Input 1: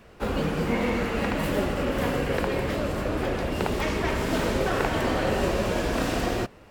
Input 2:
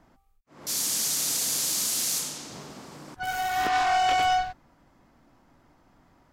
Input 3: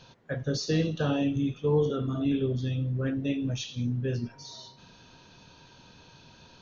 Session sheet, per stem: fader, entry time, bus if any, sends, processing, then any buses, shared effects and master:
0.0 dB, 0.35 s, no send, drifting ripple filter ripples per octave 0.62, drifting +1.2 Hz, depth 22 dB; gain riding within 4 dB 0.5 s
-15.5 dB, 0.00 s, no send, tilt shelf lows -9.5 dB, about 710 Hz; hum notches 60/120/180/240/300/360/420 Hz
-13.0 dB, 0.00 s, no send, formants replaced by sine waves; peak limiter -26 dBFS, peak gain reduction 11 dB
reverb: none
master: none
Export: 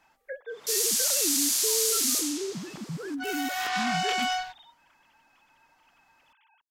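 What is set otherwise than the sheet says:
stem 1: muted; stem 2 -15.5 dB -> -7.5 dB; stem 3 -13.0 dB -> -2.0 dB

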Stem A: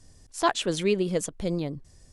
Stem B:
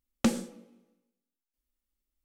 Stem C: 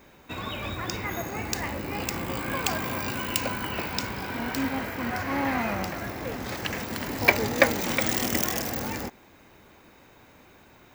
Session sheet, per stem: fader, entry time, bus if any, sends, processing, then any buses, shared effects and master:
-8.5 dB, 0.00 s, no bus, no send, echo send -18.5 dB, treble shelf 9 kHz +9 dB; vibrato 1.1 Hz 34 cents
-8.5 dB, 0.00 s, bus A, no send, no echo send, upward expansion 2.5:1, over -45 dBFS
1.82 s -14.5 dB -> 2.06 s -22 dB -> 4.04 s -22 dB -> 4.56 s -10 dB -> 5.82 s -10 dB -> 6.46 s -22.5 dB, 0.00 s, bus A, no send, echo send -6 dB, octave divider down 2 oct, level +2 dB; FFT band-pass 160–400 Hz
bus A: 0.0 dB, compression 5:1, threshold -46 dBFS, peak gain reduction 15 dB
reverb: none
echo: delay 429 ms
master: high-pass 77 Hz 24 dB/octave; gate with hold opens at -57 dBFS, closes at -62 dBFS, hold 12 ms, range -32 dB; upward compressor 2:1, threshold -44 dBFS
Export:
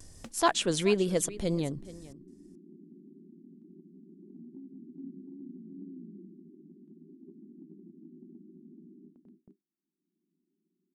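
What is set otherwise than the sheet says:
stem A -8.5 dB -> -1.5 dB; master: missing high-pass 77 Hz 24 dB/octave

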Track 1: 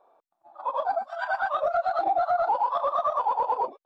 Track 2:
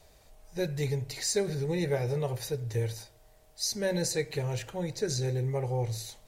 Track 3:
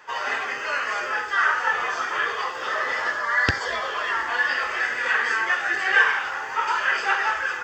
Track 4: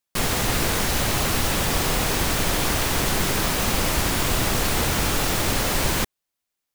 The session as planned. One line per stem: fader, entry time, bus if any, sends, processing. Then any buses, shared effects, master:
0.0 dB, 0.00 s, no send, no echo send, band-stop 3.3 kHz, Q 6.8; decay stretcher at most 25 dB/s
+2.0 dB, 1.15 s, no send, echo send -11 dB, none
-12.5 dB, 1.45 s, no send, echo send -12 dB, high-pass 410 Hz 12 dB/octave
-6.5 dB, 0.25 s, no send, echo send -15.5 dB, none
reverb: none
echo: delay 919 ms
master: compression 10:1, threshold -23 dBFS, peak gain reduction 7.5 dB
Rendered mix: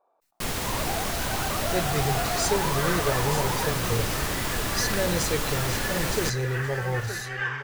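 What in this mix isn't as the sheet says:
stem 1 0.0 dB -> -8.5 dB; master: missing compression 10:1, threshold -23 dBFS, peak gain reduction 7.5 dB

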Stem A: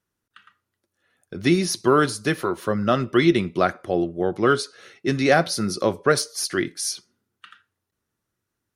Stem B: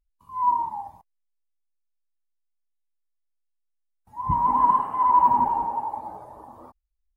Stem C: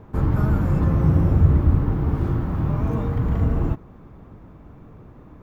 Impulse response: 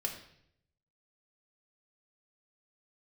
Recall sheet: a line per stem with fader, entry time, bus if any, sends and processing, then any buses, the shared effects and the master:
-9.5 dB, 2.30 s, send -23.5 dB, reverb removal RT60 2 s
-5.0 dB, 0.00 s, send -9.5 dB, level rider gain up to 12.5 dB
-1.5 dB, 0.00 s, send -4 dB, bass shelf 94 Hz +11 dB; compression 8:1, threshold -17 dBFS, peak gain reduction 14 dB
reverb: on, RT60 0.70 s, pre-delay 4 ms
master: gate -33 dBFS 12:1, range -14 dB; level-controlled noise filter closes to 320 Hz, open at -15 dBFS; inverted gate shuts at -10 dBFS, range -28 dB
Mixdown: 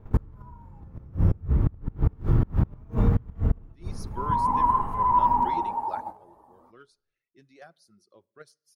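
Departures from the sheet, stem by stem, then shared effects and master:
stem A -9.5 dB -> -21.0 dB; stem B -5.0 dB -> -12.5 dB; master: missing level-controlled noise filter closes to 320 Hz, open at -15 dBFS

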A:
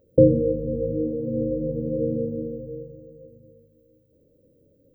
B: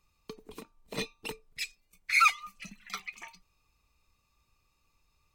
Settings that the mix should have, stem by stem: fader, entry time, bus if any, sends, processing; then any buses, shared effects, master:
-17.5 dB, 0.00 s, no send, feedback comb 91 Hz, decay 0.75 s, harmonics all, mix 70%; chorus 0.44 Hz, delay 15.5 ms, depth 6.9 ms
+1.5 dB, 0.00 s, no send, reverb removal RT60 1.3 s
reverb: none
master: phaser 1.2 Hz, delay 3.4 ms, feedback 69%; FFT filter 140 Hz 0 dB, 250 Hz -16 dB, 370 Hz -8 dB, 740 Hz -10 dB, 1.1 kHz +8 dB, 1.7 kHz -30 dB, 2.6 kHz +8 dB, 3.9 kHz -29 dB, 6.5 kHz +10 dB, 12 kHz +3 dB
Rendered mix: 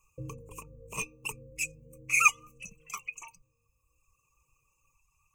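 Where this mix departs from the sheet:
stem A: missing feedback comb 91 Hz, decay 0.75 s, harmonics all, mix 70%; master: missing phaser 1.2 Hz, delay 3.4 ms, feedback 69%

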